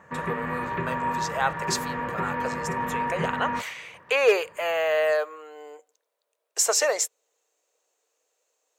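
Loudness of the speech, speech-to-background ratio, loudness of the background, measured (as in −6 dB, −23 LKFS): −26.5 LKFS, 3.0 dB, −29.5 LKFS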